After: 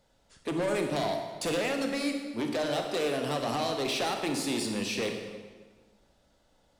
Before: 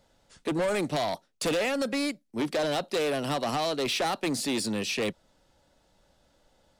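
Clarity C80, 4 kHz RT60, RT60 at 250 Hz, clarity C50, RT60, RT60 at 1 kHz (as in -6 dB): 6.5 dB, 1.2 s, 1.6 s, 5.0 dB, 1.4 s, 1.4 s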